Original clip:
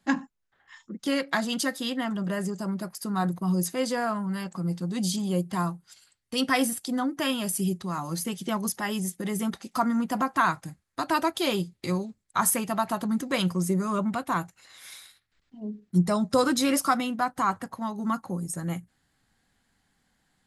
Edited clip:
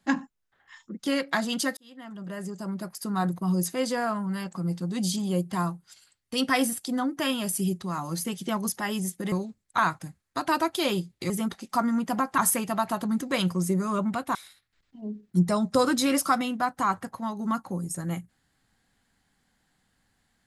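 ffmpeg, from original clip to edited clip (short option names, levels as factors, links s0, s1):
-filter_complex "[0:a]asplit=7[s0][s1][s2][s3][s4][s5][s6];[s0]atrim=end=1.77,asetpts=PTS-STARTPTS,afade=t=out:st=1.766:d=0.004:c=hsin[s7];[s1]atrim=start=1.77:end=9.322,asetpts=PTS-STARTPTS,afade=t=in:d=1.24[s8];[s2]atrim=start=11.918:end=12.382[s9];[s3]atrim=start=10.398:end=11.922[s10];[s4]atrim=start=9.318:end=10.402[s11];[s5]atrim=start=12.378:end=14.352[s12];[s6]atrim=start=14.938[s13];[s7][s8]concat=n=2:v=0:a=1[s14];[s14][s9]acrossfade=d=0.004:c1=hsin:c2=hsin[s15];[s15][s10]acrossfade=d=0.004:c1=hsin:c2=hsin[s16];[s16][s11]acrossfade=d=0.004:c1=hsin:c2=hsin[s17];[s17][s12]acrossfade=d=0.004:c1=hsin:c2=hsin[s18];[s18][s13]acrossfade=d=0.004:c1=hsin:c2=hsin"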